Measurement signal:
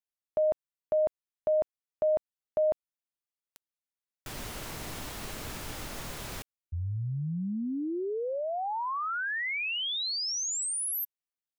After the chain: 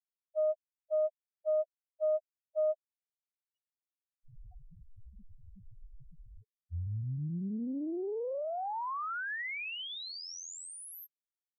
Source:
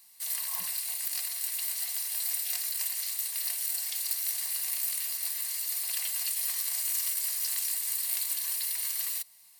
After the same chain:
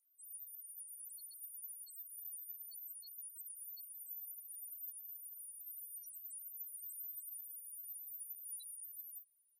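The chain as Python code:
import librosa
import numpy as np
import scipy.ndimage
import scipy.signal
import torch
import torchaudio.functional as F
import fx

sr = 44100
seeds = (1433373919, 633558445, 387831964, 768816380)

y = fx.spec_topn(x, sr, count=1)
y = fx.doppler_dist(y, sr, depth_ms=0.21)
y = y * librosa.db_to_amplitude(1.0)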